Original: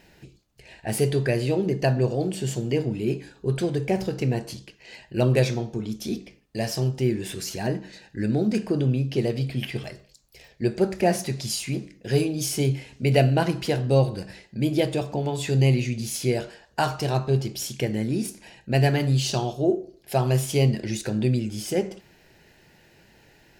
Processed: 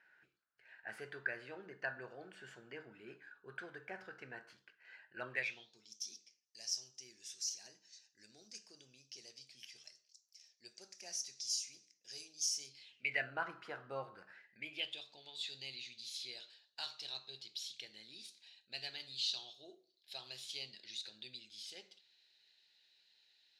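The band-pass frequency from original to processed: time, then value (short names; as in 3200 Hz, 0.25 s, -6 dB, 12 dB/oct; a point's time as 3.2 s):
band-pass, Q 6.8
5.27 s 1500 Hz
5.88 s 5800 Hz
12.66 s 5800 Hz
13.34 s 1300 Hz
14.27 s 1300 Hz
15.05 s 3900 Hz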